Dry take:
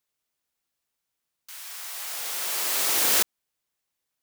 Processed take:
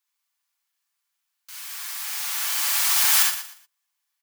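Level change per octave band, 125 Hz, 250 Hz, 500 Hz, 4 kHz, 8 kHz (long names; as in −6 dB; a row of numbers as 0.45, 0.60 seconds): can't be measured, below −15 dB, −11.0 dB, +3.5 dB, +3.5 dB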